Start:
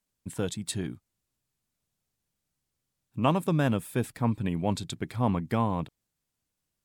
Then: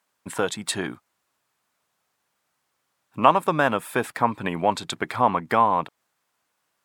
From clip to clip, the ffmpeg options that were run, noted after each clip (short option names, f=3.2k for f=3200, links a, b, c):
-filter_complex "[0:a]highpass=f=360:p=1,equalizer=f=1.1k:w=0.52:g=13.5,asplit=2[a][b];[b]acompressor=threshold=-28dB:ratio=6,volume=3dB[c];[a][c]amix=inputs=2:normalize=0,volume=-2dB"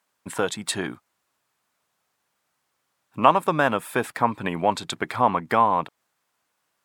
-af anull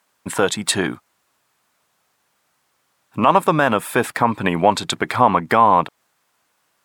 -af "alimiter=level_in=9dB:limit=-1dB:release=50:level=0:latency=1,volume=-1dB"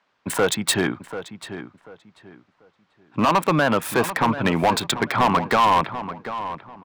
-filter_complex "[0:a]acrossover=split=130|1600|4800[a][b][c][d];[d]acrusher=bits=4:mix=0:aa=0.000001[e];[a][b][c][e]amix=inputs=4:normalize=0,asoftclip=type=hard:threshold=-13dB,asplit=2[f][g];[g]adelay=739,lowpass=f=2.6k:p=1,volume=-11.5dB,asplit=2[h][i];[i]adelay=739,lowpass=f=2.6k:p=1,volume=0.26,asplit=2[j][k];[k]adelay=739,lowpass=f=2.6k:p=1,volume=0.26[l];[f][h][j][l]amix=inputs=4:normalize=0"